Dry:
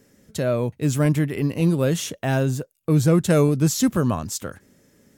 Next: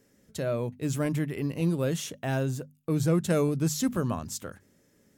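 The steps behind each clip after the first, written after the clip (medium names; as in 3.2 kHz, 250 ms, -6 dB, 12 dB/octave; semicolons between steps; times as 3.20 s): hum notches 50/100/150/200/250 Hz; trim -7 dB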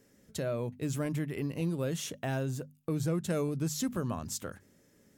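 compression 2:1, threshold -33 dBFS, peak gain reduction 7.5 dB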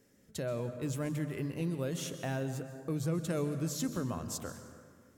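plate-style reverb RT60 1.9 s, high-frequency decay 0.5×, pre-delay 115 ms, DRR 9 dB; trim -2.5 dB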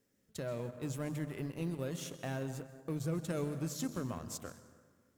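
companding laws mixed up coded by A; trim -1.5 dB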